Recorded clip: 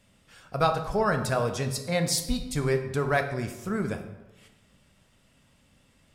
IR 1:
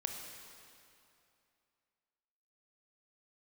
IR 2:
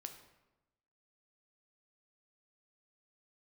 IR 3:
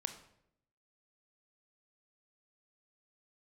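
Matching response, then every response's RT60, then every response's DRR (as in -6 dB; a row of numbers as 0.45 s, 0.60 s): 2; 2.6 s, 1.0 s, 0.75 s; 2.5 dB, 5.5 dB, 7.5 dB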